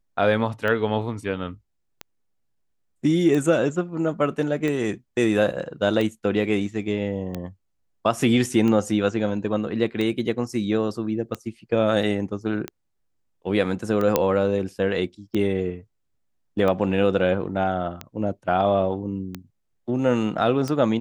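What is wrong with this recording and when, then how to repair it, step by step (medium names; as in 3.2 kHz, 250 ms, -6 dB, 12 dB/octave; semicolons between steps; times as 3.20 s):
tick 45 rpm -15 dBFS
14.16 s: pop -4 dBFS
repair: de-click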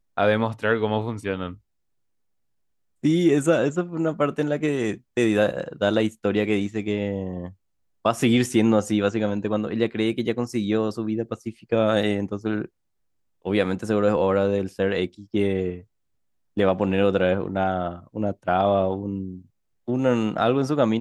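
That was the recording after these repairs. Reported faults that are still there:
nothing left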